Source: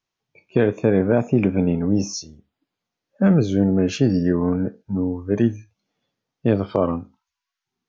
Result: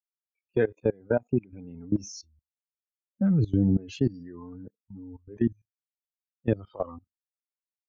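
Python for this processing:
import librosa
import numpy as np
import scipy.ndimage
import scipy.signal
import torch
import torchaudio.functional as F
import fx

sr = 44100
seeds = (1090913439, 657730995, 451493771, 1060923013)

y = fx.bin_expand(x, sr, power=2.0)
y = fx.low_shelf(y, sr, hz=310.0, db=11.5, at=(2.16, 3.77))
y = fx.level_steps(y, sr, step_db=21)
y = fx.upward_expand(y, sr, threshold_db=-40.0, expansion=1.5, at=(0.91, 1.53))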